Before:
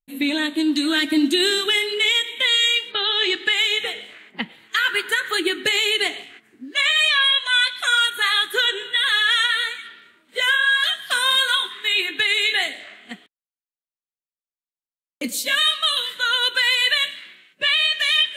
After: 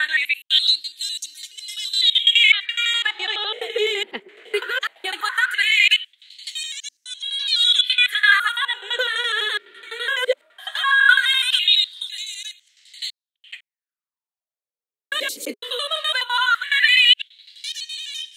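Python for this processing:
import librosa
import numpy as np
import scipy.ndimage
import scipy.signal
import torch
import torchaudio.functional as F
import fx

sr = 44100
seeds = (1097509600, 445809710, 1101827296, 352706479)

y = fx.block_reorder(x, sr, ms=84.0, group=6)
y = fx.filter_lfo_highpass(y, sr, shape='sine', hz=0.18, low_hz=390.0, high_hz=5900.0, q=6.7)
y = F.gain(torch.from_numpy(y), -4.5).numpy()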